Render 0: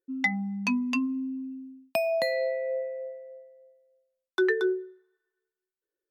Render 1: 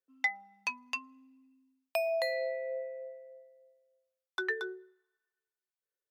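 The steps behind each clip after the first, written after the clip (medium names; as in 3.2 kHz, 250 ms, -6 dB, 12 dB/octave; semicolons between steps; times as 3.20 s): high-pass 520 Hz 24 dB/octave; trim -4 dB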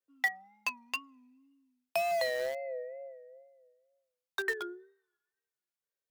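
wow and flutter 93 cents; in parallel at -11 dB: bit crusher 5-bit; on the sum: trim -1.5 dB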